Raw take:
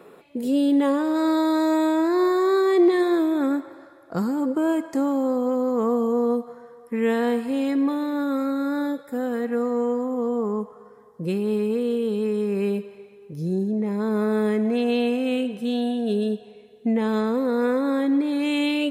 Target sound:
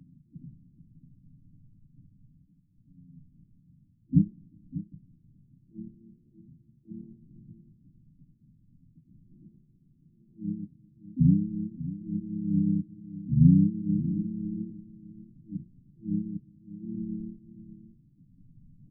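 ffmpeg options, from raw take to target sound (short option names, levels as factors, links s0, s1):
-filter_complex "[0:a]afftfilt=real='re*(1-between(b*sr/4096,220,6300))':imag='im*(1-between(b*sr/4096,220,6300))':win_size=4096:overlap=0.75,aecho=1:1:7:0.86,asplit=4[s0][s1][s2][s3];[s1]asetrate=22050,aresample=44100,atempo=2,volume=0.2[s4];[s2]asetrate=37084,aresample=44100,atempo=1.18921,volume=0.708[s5];[s3]asetrate=66075,aresample=44100,atempo=0.66742,volume=0.447[s6];[s0][s4][s5][s6]amix=inputs=4:normalize=0,asplit=2[s7][s8];[s8]aecho=0:1:595:0.188[s9];[s7][s9]amix=inputs=2:normalize=0,afftfilt=real='re*lt(b*sr/1024,490*pow(2800/490,0.5+0.5*sin(2*PI*0.77*pts/sr)))':imag='im*lt(b*sr/1024,490*pow(2800/490,0.5+0.5*sin(2*PI*0.77*pts/sr)))':win_size=1024:overlap=0.75,volume=1.68"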